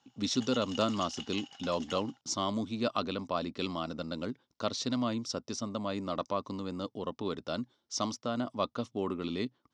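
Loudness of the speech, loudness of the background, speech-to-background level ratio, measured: -34.5 LUFS, -45.0 LUFS, 10.5 dB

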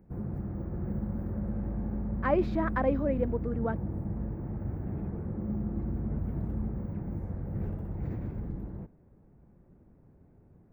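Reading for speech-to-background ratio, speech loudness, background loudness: 4.5 dB, -31.0 LUFS, -35.5 LUFS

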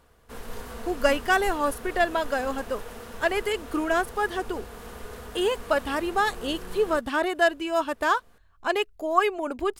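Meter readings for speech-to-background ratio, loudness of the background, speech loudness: 14.5 dB, -41.0 LUFS, -26.5 LUFS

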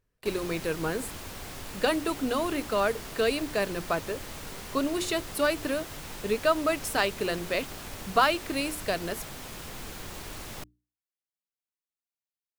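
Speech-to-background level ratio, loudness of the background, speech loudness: 11.0 dB, -40.0 LUFS, -29.0 LUFS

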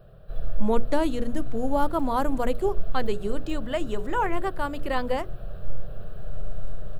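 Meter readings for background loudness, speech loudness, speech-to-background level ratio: -40.5 LUFS, -28.5 LUFS, 12.0 dB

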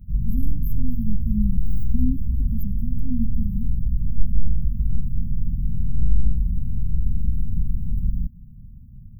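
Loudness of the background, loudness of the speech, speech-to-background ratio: -27.5 LUFS, -32.0 LUFS, -4.5 dB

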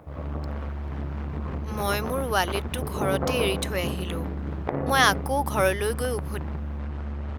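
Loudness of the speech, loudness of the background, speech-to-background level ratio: -26.5 LUFS, -31.5 LUFS, 5.0 dB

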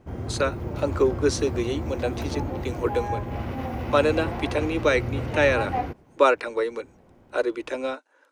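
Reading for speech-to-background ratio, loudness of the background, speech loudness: 5.5 dB, -31.0 LUFS, -25.5 LUFS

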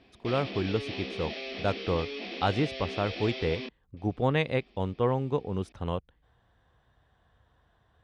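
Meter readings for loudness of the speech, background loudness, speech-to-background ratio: -31.0 LUFS, -37.5 LUFS, 6.5 dB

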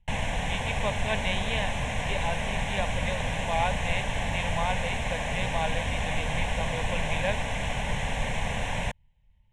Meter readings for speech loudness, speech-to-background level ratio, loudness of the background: -34.0 LUFS, -3.5 dB, -30.5 LUFS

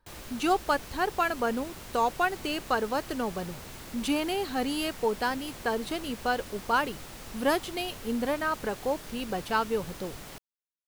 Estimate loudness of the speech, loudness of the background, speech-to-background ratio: -30.0 LUFS, -43.0 LUFS, 13.0 dB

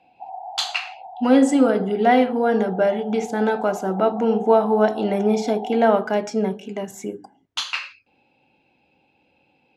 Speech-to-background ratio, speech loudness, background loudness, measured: 15.5 dB, -20.5 LUFS, -36.0 LUFS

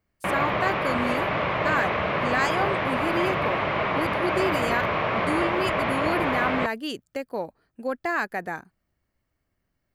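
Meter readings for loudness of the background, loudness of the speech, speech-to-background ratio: -25.0 LUFS, -30.0 LUFS, -5.0 dB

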